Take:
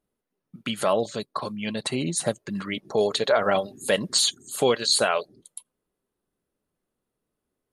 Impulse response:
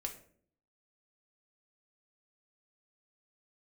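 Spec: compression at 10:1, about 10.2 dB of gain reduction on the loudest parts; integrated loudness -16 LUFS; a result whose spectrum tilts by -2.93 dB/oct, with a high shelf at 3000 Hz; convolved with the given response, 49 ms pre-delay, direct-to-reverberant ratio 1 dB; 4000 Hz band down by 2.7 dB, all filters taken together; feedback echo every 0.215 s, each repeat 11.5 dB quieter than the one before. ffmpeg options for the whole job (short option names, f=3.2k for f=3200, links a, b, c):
-filter_complex "[0:a]highshelf=f=3k:g=5.5,equalizer=f=4k:t=o:g=-7,acompressor=threshold=-27dB:ratio=10,aecho=1:1:215|430|645:0.266|0.0718|0.0194,asplit=2[a][b];[1:a]atrim=start_sample=2205,adelay=49[c];[b][c]afir=irnorm=-1:irlink=0,volume=0dB[d];[a][d]amix=inputs=2:normalize=0,volume=13dB"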